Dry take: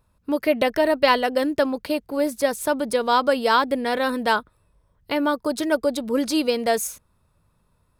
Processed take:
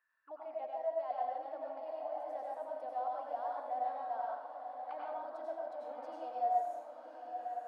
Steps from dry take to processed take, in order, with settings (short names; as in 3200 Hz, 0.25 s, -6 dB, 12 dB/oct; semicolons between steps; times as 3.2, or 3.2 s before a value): recorder AGC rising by 10 dB/s; HPF 500 Hz 6 dB/oct; reverse; compressor 5:1, threshold -36 dBFS, peak gain reduction 19.5 dB; reverse; auto-wah 700–1700 Hz, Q 19, down, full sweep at -37 dBFS; diffused feedback echo 1.076 s, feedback 53%, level -7 dB; plate-style reverb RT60 0.68 s, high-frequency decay 0.95×, pre-delay 80 ms, DRR -3 dB; speed mistake 24 fps film run at 25 fps; gain +9 dB